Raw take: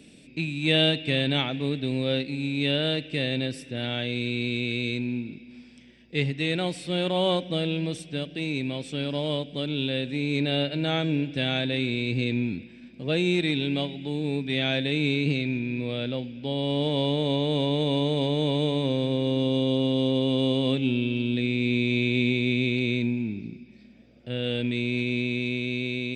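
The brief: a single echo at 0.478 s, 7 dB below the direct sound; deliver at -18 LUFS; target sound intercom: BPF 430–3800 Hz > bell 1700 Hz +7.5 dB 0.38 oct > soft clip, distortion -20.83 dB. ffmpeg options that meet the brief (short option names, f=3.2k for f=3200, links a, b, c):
-af "highpass=430,lowpass=3.8k,equalizer=f=1.7k:t=o:w=0.38:g=7.5,aecho=1:1:478:0.447,asoftclip=threshold=-17dB,volume=12dB"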